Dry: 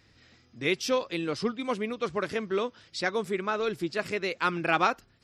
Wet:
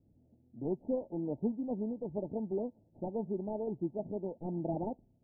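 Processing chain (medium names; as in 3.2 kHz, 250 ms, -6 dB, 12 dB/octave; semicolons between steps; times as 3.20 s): median filter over 41 samples; level-controlled noise filter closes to 630 Hz; rippled Chebyshev low-pass 910 Hz, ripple 6 dB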